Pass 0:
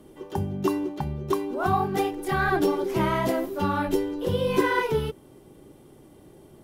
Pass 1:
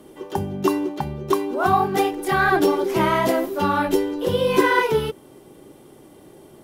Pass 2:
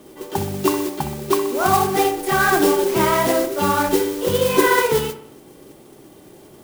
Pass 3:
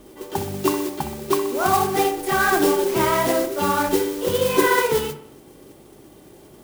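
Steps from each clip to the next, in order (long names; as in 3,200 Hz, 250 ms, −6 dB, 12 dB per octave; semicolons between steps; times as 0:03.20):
low-shelf EQ 160 Hz −10.5 dB; level +6.5 dB
noise that follows the level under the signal 11 dB; on a send: delay with a low-pass on its return 63 ms, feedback 51%, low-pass 2,200 Hz, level −10 dB; on the sum: level +1 dB
mains hum 50 Hz, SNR 30 dB; hum removal 49.33 Hz, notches 4; level −2 dB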